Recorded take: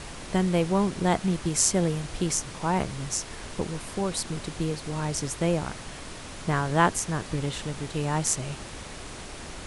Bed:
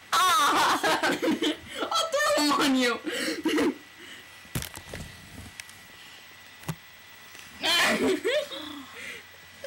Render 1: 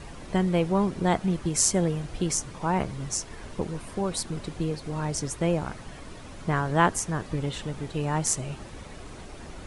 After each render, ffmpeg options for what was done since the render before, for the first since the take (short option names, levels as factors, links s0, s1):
-af "afftdn=nr=9:nf=-41"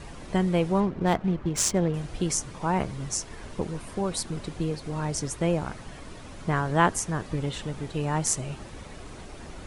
-filter_complex "[0:a]asettb=1/sr,asplit=3[s0][s1][s2];[s0]atrim=end=0.804[s3];[s1]atrim=start=0.8:end=1.94,asetpts=PTS-STARTPTS,afade=t=in:d=0.004:c=qsin,afade=t=out:st=1.136:d=0.004:c=qsin,adynamicsmooth=sensitivity=6:basefreq=1600[s4];[s2]atrim=start=1.936[s5];[s3][s4]acrossfade=d=0.004:c1=hsin:c2=qsin[s6];[s6][s5]acrossfade=d=0.004:c1=qsin:c2=hsin"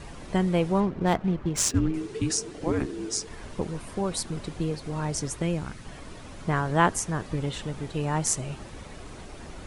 -filter_complex "[0:a]asettb=1/sr,asplit=3[s0][s1][s2];[s0]atrim=end=1.694[s3];[s1]atrim=start=1.69:end=3.27,asetpts=PTS-STARTPTS,afade=t=in:d=0.004:c=qsin,afade=t=out:st=1.576:d=0.004:c=qsin,afreqshift=-470[s4];[s2]atrim=start=3.266[s5];[s3][s4]acrossfade=d=0.004:c1=hsin:c2=qsin[s6];[s6][s5]acrossfade=d=0.004:c1=qsin:c2=hsin,asettb=1/sr,asplit=3[s7][s8][s9];[s7]atrim=end=5.424[s10];[s8]atrim=start=5.42:end=5.85,asetpts=PTS-STARTPTS,afade=t=in:d=0.004:c=qsin,afade=t=out:st=0.426:d=0.004:c=qsin,equalizer=f=710:w=0.89:g=-9[s11];[s9]atrim=start=5.846[s12];[s10][s11]acrossfade=d=0.004:c1=hsin:c2=qsin[s13];[s13][s12]acrossfade=d=0.004:c1=qsin:c2=hsin"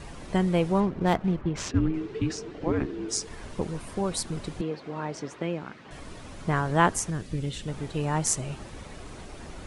-filter_complex "[0:a]asettb=1/sr,asplit=3[s0][s1][s2];[s0]atrim=end=1.414[s3];[s1]atrim=start=1.41:end=3.09,asetpts=PTS-STARTPTS,afade=t=in:d=0.004:c=qsin,afade=t=out:st=1.676:d=0.004:c=qsin,lowpass=3400[s4];[s2]atrim=start=3.086[s5];[s3][s4]acrossfade=d=0.004:c1=hsin:c2=qsin[s6];[s6][s5]acrossfade=d=0.004:c1=qsin:c2=hsin,asettb=1/sr,asplit=3[s7][s8][s9];[s7]atrim=end=4.614[s10];[s8]atrim=start=4.61:end=5.91,asetpts=PTS-STARTPTS,afade=t=in:d=0.004:c=qsin,afade=t=out:st=1.296:d=0.004:c=qsin,highpass=230,lowpass=3200[s11];[s9]atrim=start=5.906[s12];[s10][s11]acrossfade=d=0.004:c1=hsin:c2=qsin[s13];[s13][s12]acrossfade=d=0.004:c1=qsin:c2=hsin,asettb=1/sr,asplit=3[s14][s15][s16];[s14]atrim=end=7.104[s17];[s15]atrim=start=7.1:end=7.68,asetpts=PTS-STARTPTS,afade=t=in:d=0.004:c=qsin,afade=t=out:st=0.576:d=0.004:c=qsin,equalizer=f=950:w=0.84:g=-12.5[s18];[s16]atrim=start=7.676[s19];[s17][s18]acrossfade=d=0.004:c1=hsin:c2=qsin[s20];[s20][s19]acrossfade=d=0.004:c1=qsin:c2=hsin"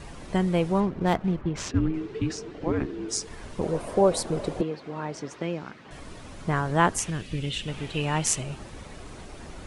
-filter_complex "[0:a]asettb=1/sr,asplit=3[s0][s1][s2];[s0]atrim=end=3.634[s3];[s1]atrim=start=3.63:end=4.63,asetpts=PTS-STARTPTS,afade=t=in:d=0.004:c=qsin,afade=t=out:st=0.996:d=0.004:c=qsin,equalizer=f=560:w=0.93:g=14[s4];[s2]atrim=start=4.626[s5];[s3][s4]acrossfade=d=0.004:c1=hsin:c2=qsin[s6];[s6][s5]acrossfade=d=0.004:c1=qsin:c2=hsin,asettb=1/sr,asplit=3[s7][s8][s9];[s7]atrim=end=5.314[s10];[s8]atrim=start=5.31:end=5.71,asetpts=PTS-STARTPTS,afade=t=in:d=0.004:c=qsin,afade=t=out:st=0.396:d=0.004:c=qsin,equalizer=f=5400:w=1.8:g=6[s11];[s9]atrim=start=5.706[s12];[s10][s11]acrossfade=d=0.004:c1=hsin:c2=qsin[s13];[s13][s12]acrossfade=d=0.004:c1=qsin:c2=hsin,asettb=1/sr,asplit=3[s14][s15][s16];[s14]atrim=end=6.984[s17];[s15]atrim=start=6.98:end=8.43,asetpts=PTS-STARTPTS,afade=t=in:d=0.004:c=qsin,afade=t=out:st=1.446:d=0.004:c=qsin,equalizer=f=2800:w=1.6:g=11.5[s18];[s16]atrim=start=8.426[s19];[s17][s18]acrossfade=d=0.004:c1=hsin:c2=qsin[s20];[s20][s19]acrossfade=d=0.004:c1=qsin:c2=hsin"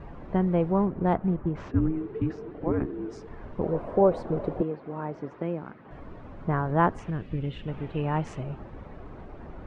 -af "lowpass=1300"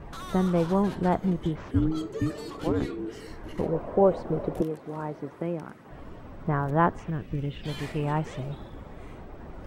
-filter_complex "[1:a]volume=0.106[s0];[0:a][s0]amix=inputs=2:normalize=0"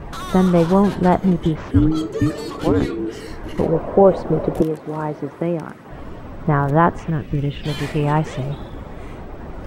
-af "volume=2.99,alimiter=limit=0.794:level=0:latency=1"